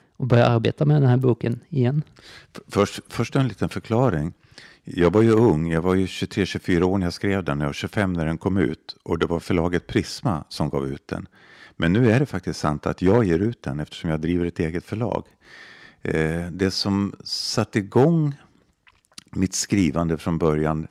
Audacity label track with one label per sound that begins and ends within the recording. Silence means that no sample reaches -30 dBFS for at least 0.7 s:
16.050000	18.320000	sound